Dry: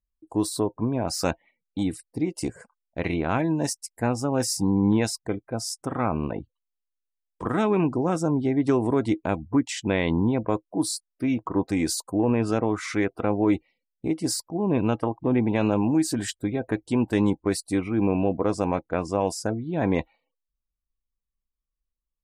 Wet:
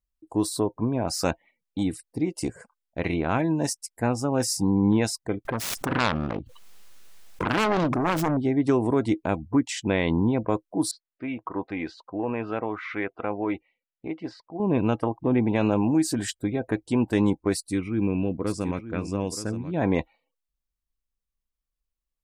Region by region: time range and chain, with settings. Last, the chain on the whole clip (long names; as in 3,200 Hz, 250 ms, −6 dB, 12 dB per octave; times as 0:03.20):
0:05.45–0:08.37: phase distortion by the signal itself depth 0.74 ms + high-shelf EQ 8,700 Hz −6.5 dB + background raised ahead of every attack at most 23 dB per second
0:10.91–0:14.60: low-pass filter 3,000 Hz 24 dB per octave + low-shelf EQ 390 Hz −11.5 dB
0:17.54–0:19.74: parametric band 740 Hz −12.5 dB 1.2 octaves + single-tap delay 924 ms −12 dB + one half of a high-frequency compander decoder only
whole clip: no processing